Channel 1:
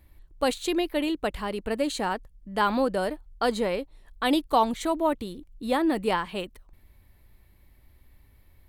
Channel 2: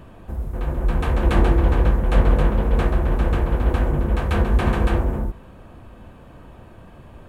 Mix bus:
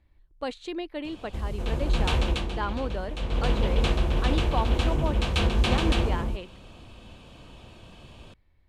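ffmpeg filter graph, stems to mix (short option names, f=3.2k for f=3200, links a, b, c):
-filter_complex "[0:a]volume=-7.5dB[a];[1:a]aexciter=amount=6.2:drive=6.6:freq=2.6k,adelay=1050,volume=7dB,afade=t=out:st=2.2:d=0.23:silence=0.251189,afade=t=in:st=3.24:d=0.35:silence=0.281838[b];[a][b]amix=inputs=2:normalize=0,lowpass=4.6k"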